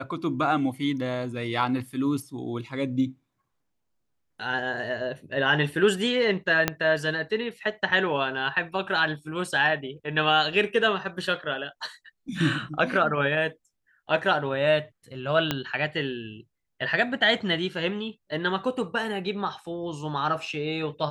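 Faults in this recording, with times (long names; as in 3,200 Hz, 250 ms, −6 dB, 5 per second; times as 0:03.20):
0:06.68: click −6 dBFS
0:15.51: click −9 dBFS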